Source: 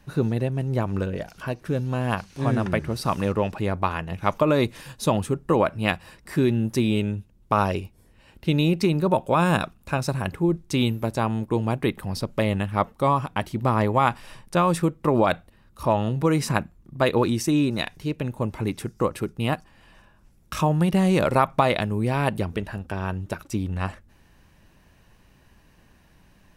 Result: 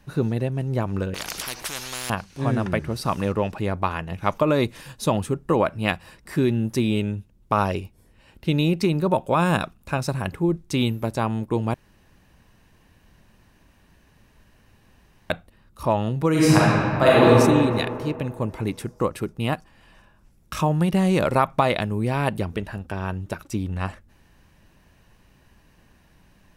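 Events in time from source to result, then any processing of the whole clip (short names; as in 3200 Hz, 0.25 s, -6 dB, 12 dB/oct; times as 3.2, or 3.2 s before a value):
1.14–2.1 spectral compressor 10:1
11.74–15.3 room tone
16.3–17.28 reverb throw, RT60 2.3 s, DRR -7.5 dB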